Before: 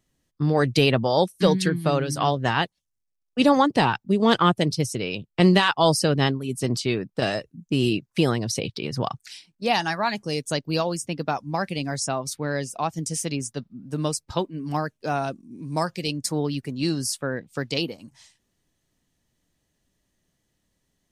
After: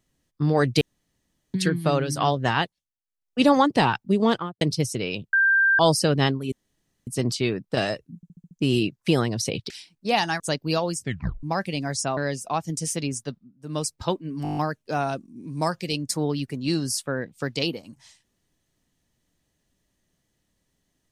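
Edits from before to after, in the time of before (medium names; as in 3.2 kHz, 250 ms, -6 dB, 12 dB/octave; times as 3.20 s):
0.81–1.54 s: room tone
2.57–3.41 s: dip -15 dB, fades 0.38 s
4.16–4.61 s: studio fade out
5.33–5.79 s: bleep 1.58 kHz -15.5 dBFS
6.52 s: insert room tone 0.55 s
7.61 s: stutter 0.07 s, 6 plays
8.80–9.27 s: delete
9.97–10.43 s: delete
11.01 s: tape stop 0.45 s
12.20–12.46 s: delete
13.56–14.14 s: dip -20 dB, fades 0.26 s
14.72 s: stutter 0.02 s, 8 plays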